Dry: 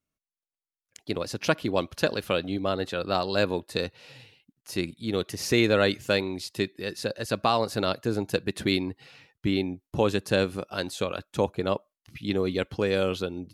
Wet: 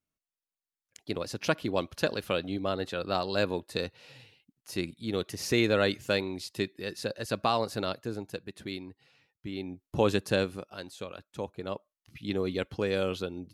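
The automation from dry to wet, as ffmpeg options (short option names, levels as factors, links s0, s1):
-af "volume=6.31,afade=t=out:st=7.58:d=0.85:silence=0.334965,afade=t=in:st=9.52:d=0.59:silence=0.237137,afade=t=out:st=10.11:d=0.66:silence=0.298538,afade=t=in:st=11.52:d=0.88:silence=0.446684"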